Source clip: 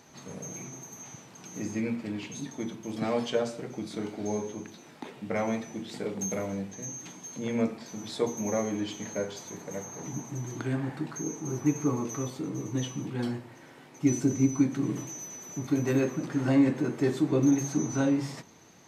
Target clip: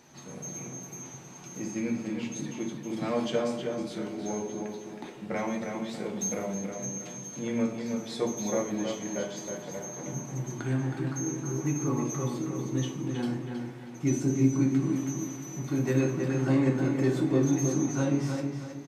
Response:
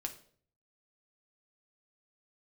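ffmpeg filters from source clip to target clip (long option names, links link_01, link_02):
-filter_complex "[0:a]asplit=2[link_01][link_02];[link_02]adelay=318,lowpass=frequency=4200:poles=1,volume=-5dB,asplit=2[link_03][link_04];[link_04]adelay=318,lowpass=frequency=4200:poles=1,volume=0.37,asplit=2[link_05][link_06];[link_06]adelay=318,lowpass=frequency=4200:poles=1,volume=0.37,asplit=2[link_07][link_08];[link_08]adelay=318,lowpass=frequency=4200:poles=1,volume=0.37,asplit=2[link_09][link_10];[link_10]adelay=318,lowpass=frequency=4200:poles=1,volume=0.37[link_11];[link_01][link_03][link_05][link_07][link_09][link_11]amix=inputs=6:normalize=0[link_12];[1:a]atrim=start_sample=2205[link_13];[link_12][link_13]afir=irnorm=-1:irlink=0"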